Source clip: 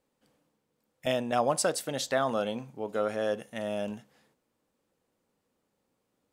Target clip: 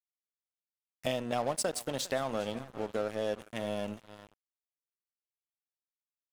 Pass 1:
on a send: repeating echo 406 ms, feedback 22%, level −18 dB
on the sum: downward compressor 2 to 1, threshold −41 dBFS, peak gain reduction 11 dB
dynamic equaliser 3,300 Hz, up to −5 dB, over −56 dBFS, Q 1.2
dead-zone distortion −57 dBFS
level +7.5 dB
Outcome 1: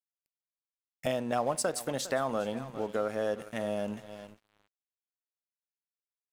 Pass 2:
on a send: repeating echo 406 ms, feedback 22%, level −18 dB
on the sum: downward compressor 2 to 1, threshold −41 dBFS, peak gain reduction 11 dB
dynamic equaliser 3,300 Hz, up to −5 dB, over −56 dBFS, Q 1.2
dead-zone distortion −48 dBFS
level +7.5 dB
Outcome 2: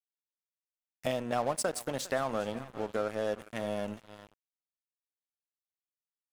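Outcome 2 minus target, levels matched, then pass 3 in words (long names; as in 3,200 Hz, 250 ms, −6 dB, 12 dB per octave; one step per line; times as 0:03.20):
4,000 Hz band −3.5 dB
on a send: repeating echo 406 ms, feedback 22%, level −18 dB
on the sum: downward compressor 2 to 1, threshold −41 dBFS, peak gain reduction 11 dB
dynamic equaliser 1,400 Hz, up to −5 dB, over −56 dBFS, Q 1.2
dead-zone distortion −48 dBFS
level +7.5 dB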